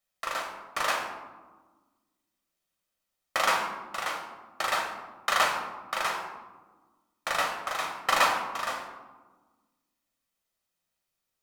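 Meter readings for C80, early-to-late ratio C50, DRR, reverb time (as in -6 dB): 8.0 dB, 6.0 dB, 2.5 dB, 1.4 s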